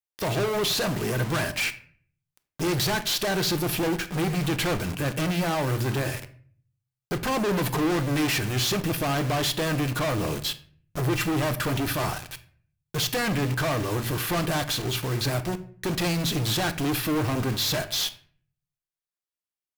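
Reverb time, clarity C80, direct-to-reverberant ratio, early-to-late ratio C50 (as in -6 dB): 0.50 s, 18.0 dB, 9.0 dB, 15.0 dB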